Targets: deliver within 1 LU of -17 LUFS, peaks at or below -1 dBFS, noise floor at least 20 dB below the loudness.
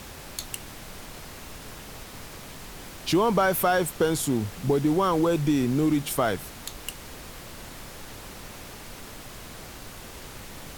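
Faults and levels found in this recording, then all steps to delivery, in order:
noise floor -43 dBFS; noise floor target -46 dBFS; loudness -25.5 LUFS; peak level -11.5 dBFS; loudness target -17.0 LUFS
-> noise print and reduce 6 dB; trim +8.5 dB

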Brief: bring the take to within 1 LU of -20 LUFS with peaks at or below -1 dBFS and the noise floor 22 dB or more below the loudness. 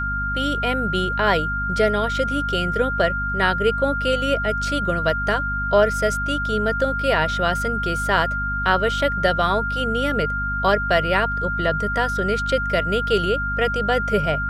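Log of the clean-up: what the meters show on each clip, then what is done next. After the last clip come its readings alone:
hum 50 Hz; highest harmonic 250 Hz; hum level -26 dBFS; steady tone 1.4 kHz; tone level -23 dBFS; loudness -21.0 LUFS; peak level -3.5 dBFS; loudness target -20.0 LUFS
-> hum notches 50/100/150/200/250 Hz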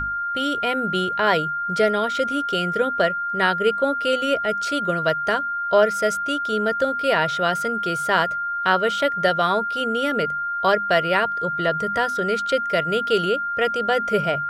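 hum not found; steady tone 1.4 kHz; tone level -23 dBFS
-> band-stop 1.4 kHz, Q 30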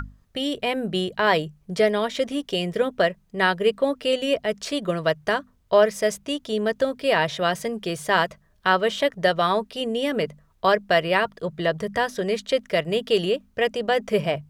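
steady tone not found; loudness -23.5 LUFS; peak level -5.0 dBFS; loudness target -20.0 LUFS
-> trim +3.5 dB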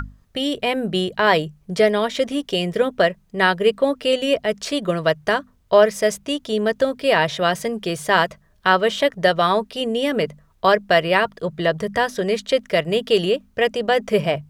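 loudness -20.0 LUFS; peak level -1.5 dBFS; noise floor -58 dBFS

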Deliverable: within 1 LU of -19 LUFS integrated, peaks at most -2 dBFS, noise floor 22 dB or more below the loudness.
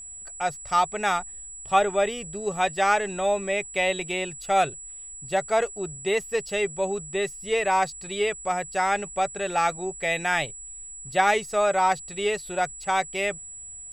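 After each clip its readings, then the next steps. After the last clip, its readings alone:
steady tone 7.8 kHz; tone level -38 dBFS; loudness -25.5 LUFS; peak level -7.0 dBFS; loudness target -19.0 LUFS
-> band-stop 7.8 kHz, Q 30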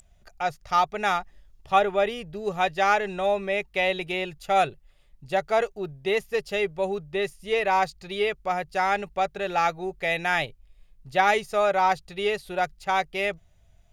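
steady tone not found; loudness -25.5 LUFS; peak level -7.5 dBFS; loudness target -19.0 LUFS
-> trim +6.5 dB; peak limiter -2 dBFS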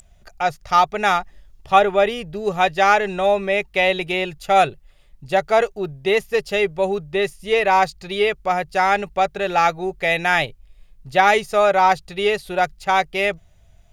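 loudness -19.5 LUFS; peak level -2.0 dBFS; noise floor -52 dBFS

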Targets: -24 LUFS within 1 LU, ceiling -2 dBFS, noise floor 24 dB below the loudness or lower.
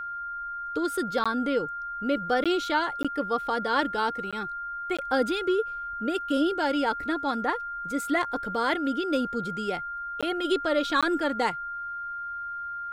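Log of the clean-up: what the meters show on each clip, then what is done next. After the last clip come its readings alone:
dropouts 7; longest dropout 16 ms; steady tone 1.4 kHz; tone level -32 dBFS; loudness -28.0 LUFS; peak level -11.0 dBFS; loudness target -24.0 LUFS
-> interpolate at 1.24/2.44/3.03/4.31/4.97/10.21/11.01 s, 16 ms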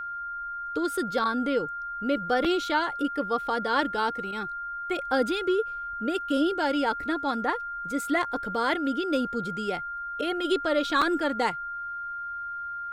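dropouts 0; steady tone 1.4 kHz; tone level -32 dBFS
-> band-stop 1.4 kHz, Q 30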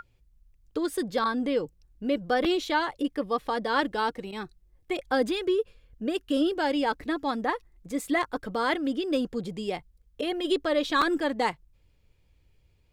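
steady tone not found; loudness -28.5 LUFS; peak level -11.5 dBFS; loudness target -24.0 LUFS
-> trim +4.5 dB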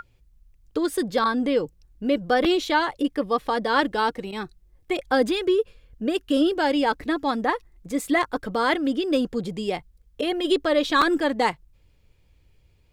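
loudness -24.0 LUFS; peak level -7.0 dBFS; noise floor -60 dBFS

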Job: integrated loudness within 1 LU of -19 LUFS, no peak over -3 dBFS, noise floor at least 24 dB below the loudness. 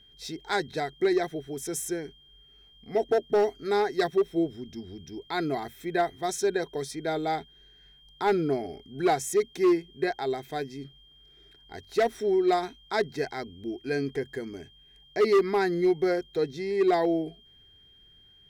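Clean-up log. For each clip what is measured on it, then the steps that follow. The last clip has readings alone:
clipped samples 0.8%; clipping level -17.0 dBFS; steady tone 3.2 kHz; tone level -55 dBFS; loudness -28.0 LUFS; peak level -17.0 dBFS; loudness target -19.0 LUFS
-> clip repair -17 dBFS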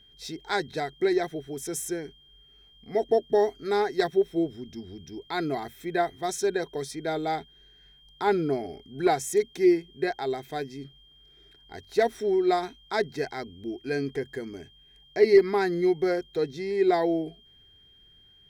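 clipped samples 0.0%; steady tone 3.2 kHz; tone level -55 dBFS
-> band-stop 3.2 kHz, Q 30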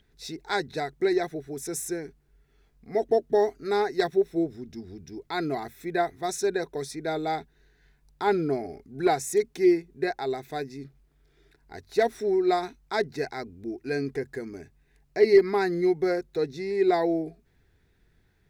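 steady tone not found; loudness -27.0 LUFS; peak level -8.0 dBFS; loudness target -19.0 LUFS
-> trim +8 dB; peak limiter -3 dBFS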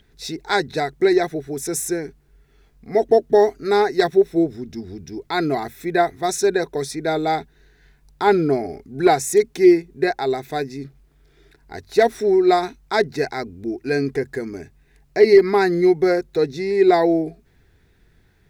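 loudness -19.5 LUFS; peak level -3.0 dBFS; noise floor -58 dBFS

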